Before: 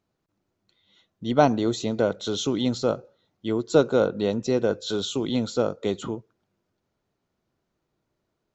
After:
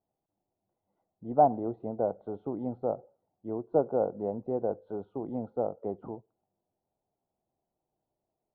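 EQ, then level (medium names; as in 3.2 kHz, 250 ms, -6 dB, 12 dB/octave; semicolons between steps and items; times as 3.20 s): four-pole ladder low-pass 850 Hz, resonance 65%; 0.0 dB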